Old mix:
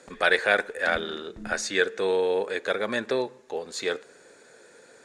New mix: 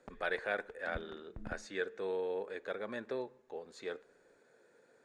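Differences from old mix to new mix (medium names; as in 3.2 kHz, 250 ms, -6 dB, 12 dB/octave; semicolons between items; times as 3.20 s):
speech -12.0 dB; master: add treble shelf 2.7 kHz -11.5 dB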